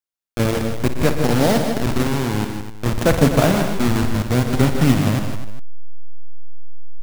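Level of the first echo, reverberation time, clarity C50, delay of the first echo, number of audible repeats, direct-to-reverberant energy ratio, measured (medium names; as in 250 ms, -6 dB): -11.5 dB, no reverb, no reverb, 57 ms, 5, no reverb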